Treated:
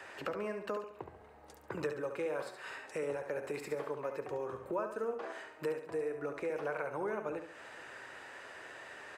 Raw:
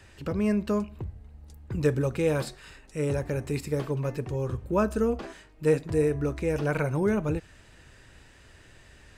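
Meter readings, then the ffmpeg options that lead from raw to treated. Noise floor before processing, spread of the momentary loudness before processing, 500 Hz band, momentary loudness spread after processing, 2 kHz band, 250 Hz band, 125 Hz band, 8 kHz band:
−54 dBFS, 10 LU, −8.5 dB, 11 LU, −5.0 dB, −16.5 dB, −23.5 dB, −12.0 dB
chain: -filter_complex "[0:a]highpass=140,acrossover=split=440 2000:gain=0.0891 1 0.224[link_01][link_02][link_03];[link_01][link_02][link_03]amix=inputs=3:normalize=0,acompressor=threshold=-49dB:ratio=4,asplit=2[link_04][link_05];[link_05]aecho=0:1:70|140|210|280|350:0.398|0.163|0.0669|0.0274|0.0112[link_06];[link_04][link_06]amix=inputs=2:normalize=0,volume=11dB"

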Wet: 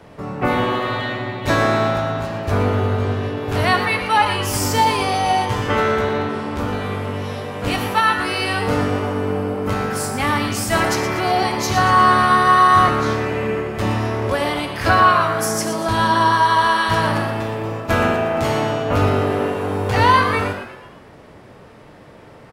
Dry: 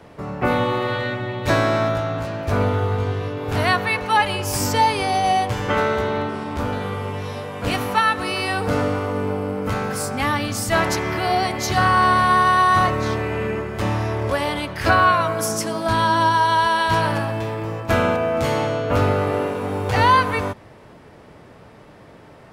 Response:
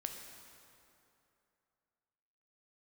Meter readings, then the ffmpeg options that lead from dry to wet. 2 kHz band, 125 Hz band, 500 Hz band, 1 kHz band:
+2.0 dB, +1.5 dB, +1.5 dB, +2.0 dB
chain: -filter_complex "[0:a]asplit=6[link_01][link_02][link_03][link_04][link_05][link_06];[link_02]adelay=119,afreqshift=140,volume=-11.5dB[link_07];[link_03]adelay=238,afreqshift=280,volume=-17.7dB[link_08];[link_04]adelay=357,afreqshift=420,volume=-23.9dB[link_09];[link_05]adelay=476,afreqshift=560,volume=-30.1dB[link_10];[link_06]adelay=595,afreqshift=700,volume=-36.3dB[link_11];[link_01][link_07][link_08][link_09][link_10][link_11]amix=inputs=6:normalize=0[link_12];[1:a]atrim=start_sample=2205,afade=type=out:start_time=0.17:duration=0.01,atrim=end_sample=7938[link_13];[link_12][link_13]afir=irnorm=-1:irlink=0,volume=3.5dB"

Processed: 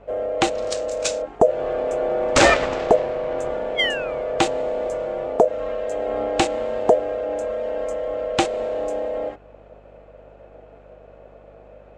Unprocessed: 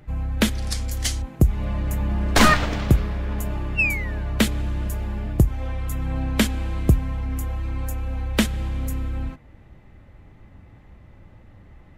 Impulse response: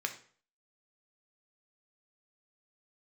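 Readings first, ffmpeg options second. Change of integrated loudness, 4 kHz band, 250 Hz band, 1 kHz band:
+1.5 dB, +1.5 dB, −4.0 dB, +5.0 dB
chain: -filter_complex "[0:a]aeval=exprs='val(0)*sin(2*PI*560*n/s)':channel_layout=same,acrossover=split=2900[link_01][link_02];[link_02]adynamicsmooth=sensitivity=1.5:basefreq=4500[link_03];[link_01][link_03]amix=inputs=2:normalize=0,aeval=exprs='val(0)+0.002*(sin(2*PI*50*n/s)+sin(2*PI*2*50*n/s)/2+sin(2*PI*3*50*n/s)/3+sin(2*PI*4*50*n/s)/4+sin(2*PI*5*50*n/s)/5)':channel_layout=same,lowpass=frequency=7700:width_type=q:width=3.4,volume=3dB"

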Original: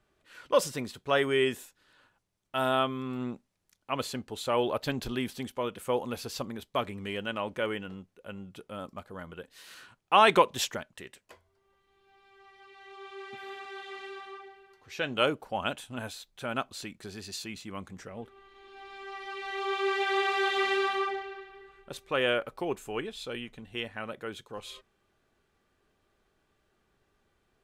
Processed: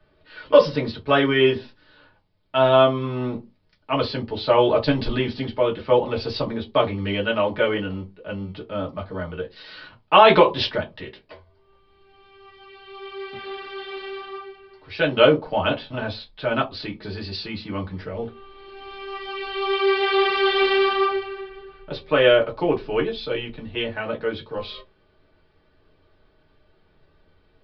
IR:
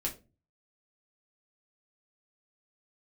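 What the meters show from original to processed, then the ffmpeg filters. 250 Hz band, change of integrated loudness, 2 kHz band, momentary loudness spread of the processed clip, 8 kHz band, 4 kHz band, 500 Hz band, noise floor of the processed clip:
+10.0 dB, +9.5 dB, +7.0 dB, 18 LU, below −15 dB, +8.5 dB, +11.5 dB, −61 dBFS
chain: -filter_complex "[0:a]acrossover=split=130[link_01][link_02];[link_01]acrusher=samples=41:mix=1:aa=0.000001[link_03];[link_03][link_02]amix=inputs=2:normalize=0[link_04];[1:a]atrim=start_sample=2205,asetrate=74970,aresample=44100[link_05];[link_04][link_05]afir=irnorm=-1:irlink=0,aresample=11025,aresample=44100,alimiter=level_in=12dB:limit=-1dB:release=50:level=0:latency=1,volume=-1dB"

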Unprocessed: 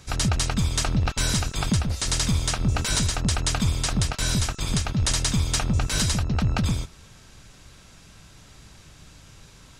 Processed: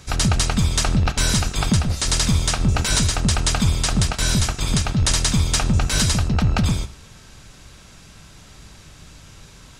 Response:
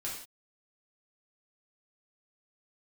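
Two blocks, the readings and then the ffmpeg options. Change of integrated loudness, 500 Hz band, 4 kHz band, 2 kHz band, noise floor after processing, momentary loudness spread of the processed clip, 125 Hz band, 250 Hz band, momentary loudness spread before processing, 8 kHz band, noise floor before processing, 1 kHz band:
+4.5 dB, +4.5 dB, +4.5 dB, +4.5 dB, −46 dBFS, 2 LU, +4.5 dB, +4.5 dB, 2 LU, +4.5 dB, −50 dBFS, +4.5 dB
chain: -filter_complex "[0:a]asplit=2[link_01][link_02];[1:a]atrim=start_sample=2205,atrim=end_sample=3969,asetrate=24696,aresample=44100[link_03];[link_02][link_03]afir=irnorm=-1:irlink=0,volume=-17.5dB[link_04];[link_01][link_04]amix=inputs=2:normalize=0,volume=3.5dB"

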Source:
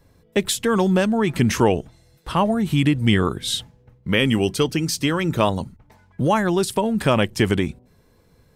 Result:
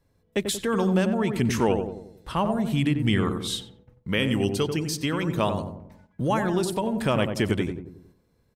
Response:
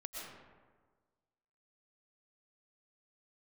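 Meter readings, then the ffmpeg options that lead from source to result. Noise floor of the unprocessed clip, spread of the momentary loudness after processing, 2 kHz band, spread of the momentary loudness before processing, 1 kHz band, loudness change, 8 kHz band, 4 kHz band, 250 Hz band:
−58 dBFS, 10 LU, −5.5 dB, 7 LU, −5.5 dB, −5.0 dB, −6.0 dB, −6.0 dB, −4.5 dB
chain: -filter_complex "[0:a]asplit=2[link_01][link_02];[link_02]adelay=91,lowpass=frequency=980:poles=1,volume=-5dB,asplit=2[link_03][link_04];[link_04]adelay=91,lowpass=frequency=980:poles=1,volume=0.52,asplit=2[link_05][link_06];[link_06]adelay=91,lowpass=frequency=980:poles=1,volume=0.52,asplit=2[link_07][link_08];[link_08]adelay=91,lowpass=frequency=980:poles=1,volume=0.52,asplit=2[link_09][link_10];[link_10]adelay=91,lowpass=frequency=980:poles=1,volume=0.52,asplit=2[link_11][link_12];[link_12]adelay=91,lowpass=frequency=980:poles=1,volume=0.52,asplit=2[link_13][link_14];[link_14]adelay=91,lowpass=frequency=980:poles=1,volume=0.52[link_15];[link_01][link_03][link_05][link_07][link_09][link_11][link_13][link_15]amix=inputs=8:normalize=0,agate=range=-6dB:threshold=-48dB:ratio=16:detection=peak,volume=-6dB"

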